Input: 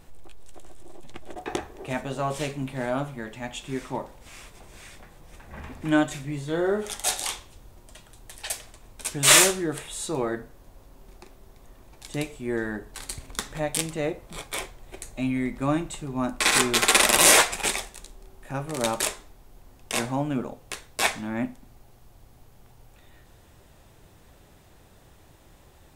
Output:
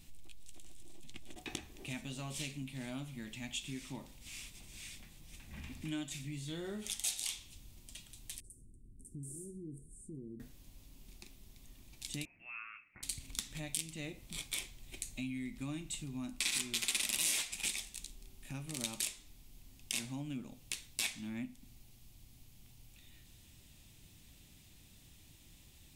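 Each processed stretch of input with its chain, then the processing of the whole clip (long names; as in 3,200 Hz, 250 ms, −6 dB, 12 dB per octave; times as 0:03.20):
0:08.40–0:10.40: Chebyshev band-stop filter 410–9,000 Hz, order 4 + downward compressor 2 to 1, threshold −39 dBFS + high-frequency loss of the air 110 metres
0:12.25–0:13.03: high-pass filter 1,100 Hz + voice inversion scrambler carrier 3,000 Hz
whole clip: flat-topped bell 820 Hz −16 dB 2.5 octaves; downward compressor 3 to 1, threshold −36 dBFS; low-shelf EQ 410 Hz −6.5 dB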